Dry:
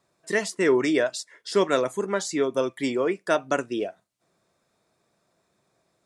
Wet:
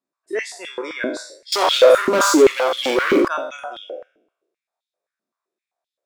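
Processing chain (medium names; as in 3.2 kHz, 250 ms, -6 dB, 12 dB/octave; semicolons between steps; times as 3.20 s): spectral sustain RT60 0.94 s; spectral noise reduction 15 dB; 1.52–3.28 s: waveshaping leveller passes 5; step-sequenced high-pass 7.7 Hz 250–3300 Hz; trim -6 dB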